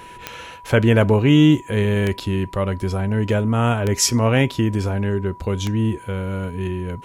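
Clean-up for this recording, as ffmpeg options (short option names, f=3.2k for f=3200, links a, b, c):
-af "adeclick=t=4,bandreject=f=980:w=30"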